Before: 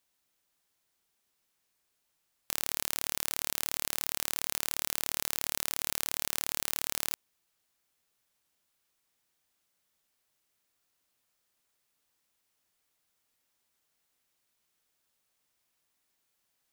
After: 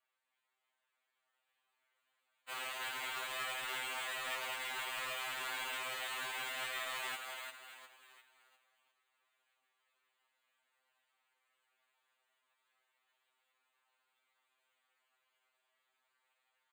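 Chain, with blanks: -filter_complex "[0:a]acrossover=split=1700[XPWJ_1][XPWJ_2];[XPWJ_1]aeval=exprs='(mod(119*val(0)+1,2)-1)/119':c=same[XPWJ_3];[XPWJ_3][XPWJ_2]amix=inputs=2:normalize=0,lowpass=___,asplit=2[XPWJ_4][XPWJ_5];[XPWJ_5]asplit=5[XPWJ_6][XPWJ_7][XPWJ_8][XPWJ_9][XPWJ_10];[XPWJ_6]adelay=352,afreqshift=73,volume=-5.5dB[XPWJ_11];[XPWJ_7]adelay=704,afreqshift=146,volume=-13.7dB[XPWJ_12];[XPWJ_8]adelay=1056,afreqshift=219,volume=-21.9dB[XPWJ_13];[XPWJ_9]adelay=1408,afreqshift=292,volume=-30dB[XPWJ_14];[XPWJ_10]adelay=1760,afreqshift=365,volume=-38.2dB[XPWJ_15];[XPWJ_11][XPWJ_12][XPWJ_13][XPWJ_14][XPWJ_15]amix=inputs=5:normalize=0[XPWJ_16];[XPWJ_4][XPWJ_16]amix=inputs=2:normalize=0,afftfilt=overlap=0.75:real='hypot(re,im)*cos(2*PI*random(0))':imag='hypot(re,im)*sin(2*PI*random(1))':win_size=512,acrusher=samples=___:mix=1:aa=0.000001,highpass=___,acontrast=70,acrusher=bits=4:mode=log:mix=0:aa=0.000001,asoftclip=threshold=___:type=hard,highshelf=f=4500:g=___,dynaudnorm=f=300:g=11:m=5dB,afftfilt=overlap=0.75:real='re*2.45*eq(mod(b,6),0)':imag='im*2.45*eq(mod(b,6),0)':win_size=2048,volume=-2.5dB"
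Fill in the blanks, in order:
9200, 8, 780, -30.5dB, -3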